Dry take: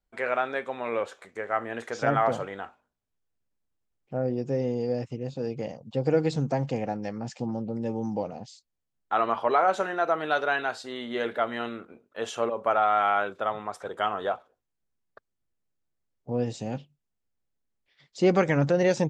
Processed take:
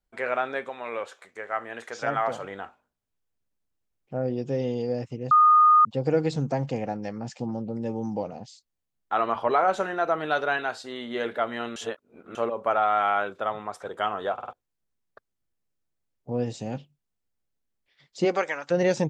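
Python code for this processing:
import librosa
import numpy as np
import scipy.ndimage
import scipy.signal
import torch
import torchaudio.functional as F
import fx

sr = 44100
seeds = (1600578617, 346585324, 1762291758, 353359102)

y = fx.low_shelf(x, sr, hz=460.0, db=-9.5, at=(0.69, 2.44))
y = fx.peak_eq(y, sr, hz=3300.0, db=fx.line((4.21, 7.0), (4.81, 13.5)), octaves=0.53, at=(4.21, 4.81), fade=0.02)
y = fx.low_shelf(y, sr, hz=110.0, db=10.5, at=(9.35, 10.58))
y = fx.highpass(y, sr, hz=fx.line((18.24, 330.0), (18.7, 1400.0)), slope=12, at=(18.24, 18.7), fade=0.02)
y = fx.edit(y, sr, fx.bleep(start_s=5.31, length_s=0.54, hz=1230.0, db=-13.0),
    fx.reverse_span(start_s=11.76, length_s=0.59),
    fx.stutter_over(start_s=14.33, slice_s=0.05, count=4), tone=tone)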